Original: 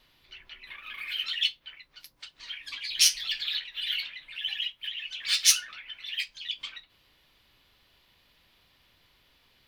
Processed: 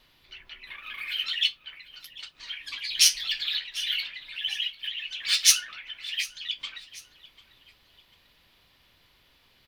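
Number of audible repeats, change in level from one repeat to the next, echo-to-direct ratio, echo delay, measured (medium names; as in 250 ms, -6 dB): 2, -7.5 dB, -19.5 dB, 744 ms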